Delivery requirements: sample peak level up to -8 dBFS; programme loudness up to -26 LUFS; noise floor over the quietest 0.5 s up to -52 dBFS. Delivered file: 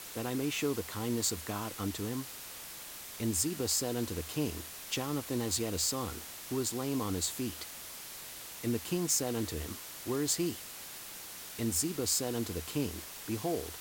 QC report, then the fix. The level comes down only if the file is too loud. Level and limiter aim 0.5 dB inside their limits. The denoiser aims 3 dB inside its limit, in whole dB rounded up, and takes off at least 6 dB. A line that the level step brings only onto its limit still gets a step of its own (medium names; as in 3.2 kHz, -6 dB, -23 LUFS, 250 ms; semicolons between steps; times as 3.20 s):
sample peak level -18.0 dBFS: pass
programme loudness -34.5 LUFS: pass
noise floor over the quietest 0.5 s -46 dBFS: fail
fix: noise reduction 9 dB, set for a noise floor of -46 dBFS